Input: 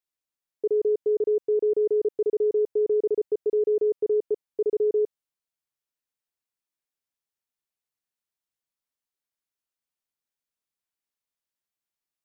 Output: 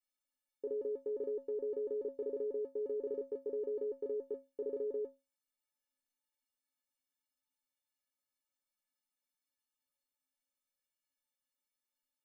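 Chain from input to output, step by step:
stiff-string resonator 260 Hz, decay 0.28 s, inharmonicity 0.03
level +11 dB

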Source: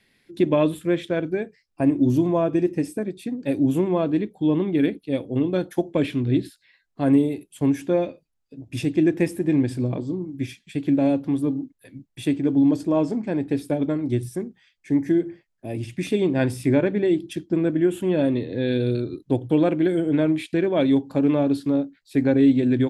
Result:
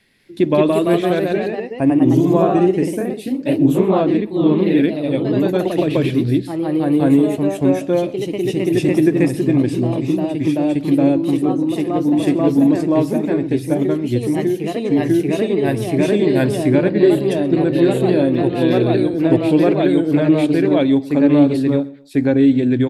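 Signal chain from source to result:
on a send: repeating echo 129 ms, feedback 35%, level −22 dB
on the sum: delay with pitch and tempo change per echo 198 ms, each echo +1 semitone, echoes 3
level +4 dB

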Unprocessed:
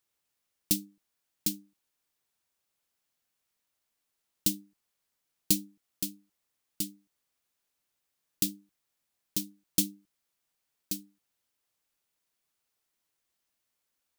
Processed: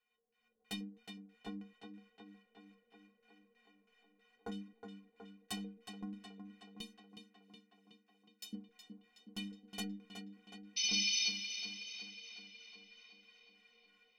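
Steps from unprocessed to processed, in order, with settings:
auto-filter low-pass square 3.1 Hz 480–2,500 Hz
wave folding −28.5 dBFS
automatic gain control gain up to 12.5 dB
brickwall limiter −32 dBFS, peak gain reduction 16 dB
0:06.81–0:08.53: first difference
0:10.76–0:11.30: sound drawn into the spectrogram noise 2,000–6,100 Hz −34 dBFS
parametric band 480 Hz +2.5 dB
stiff-string resonator 220 Hz, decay 0.34 s, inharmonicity 0.03
tape delay 368 ms, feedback 73%, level −6.5 dB, low-pass 4,900 Hz
level +13.5 dB

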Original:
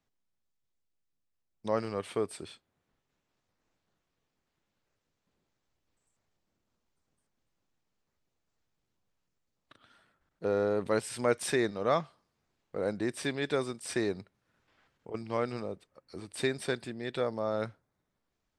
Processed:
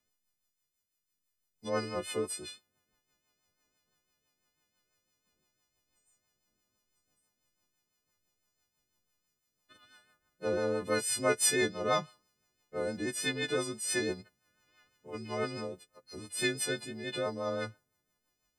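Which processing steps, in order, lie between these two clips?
every partial snapped to a pitch grid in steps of 3 semitones
rotating-speaker cabinet horn 6 Hz

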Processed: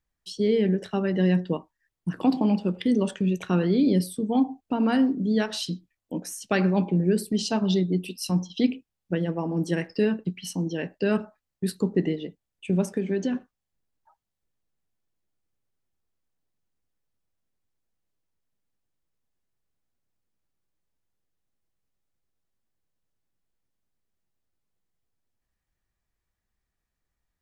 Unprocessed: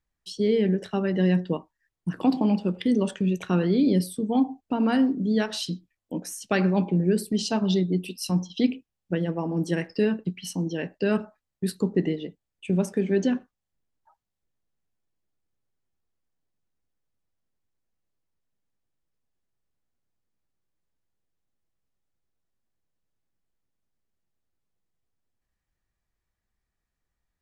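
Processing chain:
0:12.84–0:13.34: downward compressor, threshold −22 dBFS, peak gain reduction 5 dB

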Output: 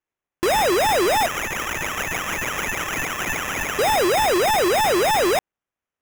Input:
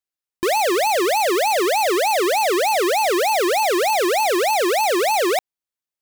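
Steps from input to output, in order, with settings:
0:01.26–0:03.79: elliptic high-pass filter 1,200 Hz
sample-rate reduction 4,400 Hz, jitter 0%

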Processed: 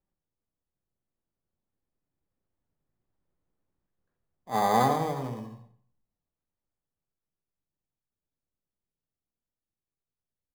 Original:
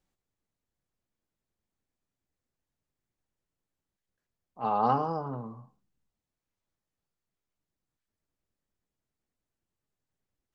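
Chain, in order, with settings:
source passing by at 0:03.66, 13 m/s, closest 15 metres
low-pass filter 1,800 Hz
in parallel at −6 dB: decimation without filtering 16×
on the sum: far-end echo of a speakerphone 260 ms, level −28 dB
on a send at −8.5 dB: convolution reverb RT60 0.40 s, pre-delay 69 ms
on the sum: level +2.5 dB

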